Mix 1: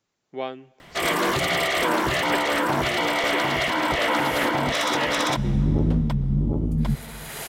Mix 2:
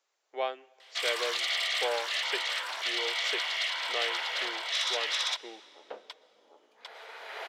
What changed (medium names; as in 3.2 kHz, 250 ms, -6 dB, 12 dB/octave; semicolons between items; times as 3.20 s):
first sound: add band-pass filter 4 kHz, Q 1.5; second sound: add distance through air 290 m; master: add high-pass 480 Hz 24 dB/octave